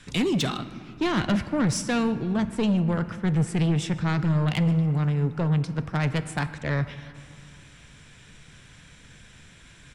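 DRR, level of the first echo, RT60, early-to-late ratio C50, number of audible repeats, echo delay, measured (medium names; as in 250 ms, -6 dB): 11.5 dB, -24.0 dB, 2.5 s, 12.5 dB, 1, 153 ms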